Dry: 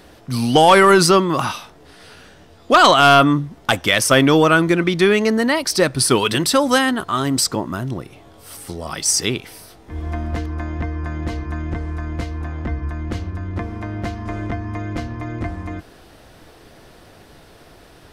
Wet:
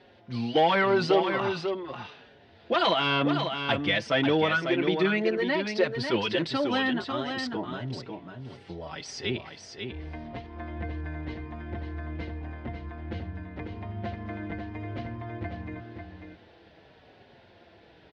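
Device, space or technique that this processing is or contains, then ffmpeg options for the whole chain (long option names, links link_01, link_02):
barber-pole flanger into a guitar amplifier: -filter_complex "[0:a]asplit=2[link_01][link_02];[link_02]adelay=5,afreqshift=-0.87[link_03];[link_01][link_03]amix=inputs=2:normalize=1,asoftclip=type=tanh:threshold=-8dB,highpass=89,equalizer=frequency=150:width_type=q:width=4:gain=-5,equalizer=frequency=280:width_type=q:width=4:gain=-4,equalizer=frequency=1200:width_type=q:width=4:gain=-9,lowpass=frequency=3900:width=0.5412,lowpass=frequency=3900:width=1.3066,aecho=1:1:545:0.473,volume=-5dB"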